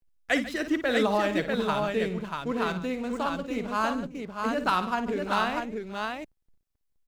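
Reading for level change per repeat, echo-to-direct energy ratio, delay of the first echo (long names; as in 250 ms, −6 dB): repeats not evenly spaced, −3.0 dB, 55 ms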